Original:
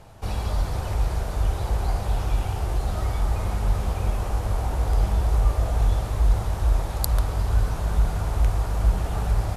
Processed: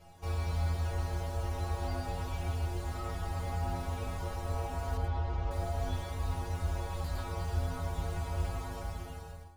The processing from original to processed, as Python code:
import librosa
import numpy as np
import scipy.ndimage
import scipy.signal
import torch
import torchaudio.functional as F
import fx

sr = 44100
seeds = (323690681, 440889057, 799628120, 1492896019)

y = fx.fade_out_tail(x, sr, length_s=0.98)
y = fx.stiff_resonator(y, sr, f0_hz=83.0, decay_s=0.69, stiffness=0.008)
y = fx.mod_noise(y, sr, seeds[0], snr_db=29)
y = fx.air_absorb(y, sr, metres=190.0, at=(4.97, 5.51))
y = y + 10.0 ** (-9.0 / 20.0) * np.pad(y, (int(109 * sr / 1000.0), 0))[:len(y)]
y = fx.slew_limit(y, sr, full_power_hz=10.0)
y = F.gain(torch.from_numpy(y), 5.5).numpy()